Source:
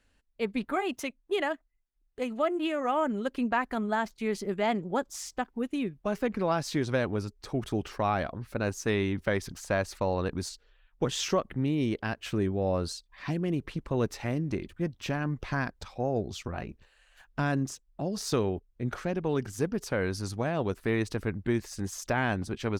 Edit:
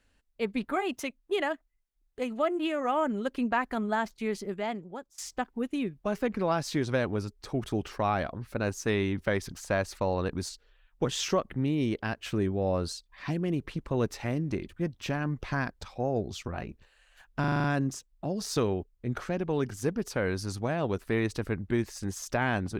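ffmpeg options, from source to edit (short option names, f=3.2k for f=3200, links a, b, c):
-filter_complex "[0:a]asplit=8[a][b][c][d][e][f][g][h];[a]atrim=end=5.18,asetpts=PTS-STARTPTS,afade=t=out:st=4.17:d=1.01:silence=0.0749894[i];[b]atrim=start=5.18:end=17.442,asetpts=PTS-STARTPTS,afade=t=in:d=0.004:c=hsin:silence=0.0749894[j];[c]atrim=start=17.398:end=17.442[k];[d]atrim=start=17.398:end=17.442[l];[e]atrim=start=17.398:end=17.442[m];[f]atrim=start=17.398:end=17.442[n];[g]atrim=start=17.398:end=17.442[o];[h]atrim=start=17.398[p];[i][j]concat=n=2:v=0:a=1[q];[q][k]acrossfade=d=0.004:c1=hsin:c2=hsin[r];[r][l]acrossfade=d=0.004:c1=hsin:c2=hsin[s];[s][m]acrossfade=d=0.004:c1=hsin:c2=hsin[t];[t][n]acrossfade=d=0.004:c1=hsin:c2=hsin[u];[u][o]acrossfade=d=0.004:c1=hsin:c2=hsin[v];[v][p]acrossfade=d=0.004:c1=hsin:c2=hsin"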